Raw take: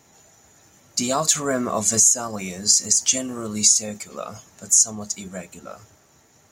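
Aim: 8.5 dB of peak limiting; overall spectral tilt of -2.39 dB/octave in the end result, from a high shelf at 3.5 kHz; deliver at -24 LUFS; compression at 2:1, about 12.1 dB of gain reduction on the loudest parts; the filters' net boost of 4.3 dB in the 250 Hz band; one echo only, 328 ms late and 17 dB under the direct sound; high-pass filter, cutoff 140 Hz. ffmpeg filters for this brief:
-af "highpass=140,equalizer=f=250:t=o:g=5.5,highshelf=f=3500:g=4.5,acompressor=threshold=0.0282:ratio=2,alimiter=limit=0.126:level=0:latency=1,aecho=1:1:328:0.141,volume=1.88"

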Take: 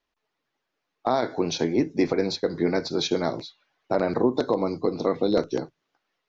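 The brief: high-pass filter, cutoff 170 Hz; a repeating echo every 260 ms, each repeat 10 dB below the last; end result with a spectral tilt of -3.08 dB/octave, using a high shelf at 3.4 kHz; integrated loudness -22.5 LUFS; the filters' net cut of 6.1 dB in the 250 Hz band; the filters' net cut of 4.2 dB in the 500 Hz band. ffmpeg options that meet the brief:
-af "highpass=170,equalizer=f=250:t=o:g=-6,equalizer=f=500:t=o:g=-3.5,highshelf=f=3400:g=8.5,aecho=1:1:260|520|780|1040:0.316|0.101|0.0324|0.0104,volume=1.88"

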